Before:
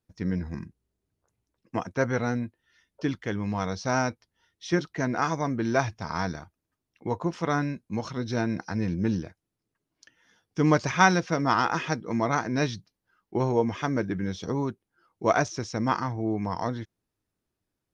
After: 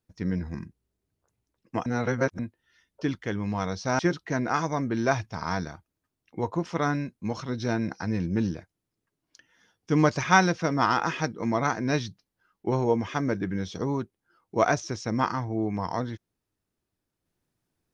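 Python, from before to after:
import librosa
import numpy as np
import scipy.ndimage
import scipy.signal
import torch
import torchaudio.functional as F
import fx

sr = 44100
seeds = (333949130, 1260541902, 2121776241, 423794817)

y = fx.edit(x, sr, fx.reverse_span(start_s=1.86, length_s=0.53),
    fx.cut(start_s=3.99, length_s=0.68), tone=tone)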